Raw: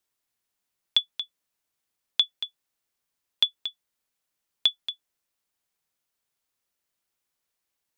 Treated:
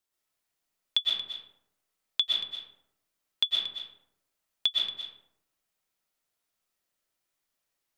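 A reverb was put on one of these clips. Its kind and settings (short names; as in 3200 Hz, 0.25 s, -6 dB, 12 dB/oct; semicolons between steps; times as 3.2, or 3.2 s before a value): digital reverb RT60 0.81 s, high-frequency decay 0.45×, pre-delay 85 ms, DRR -4 dB; gain -4.5 dB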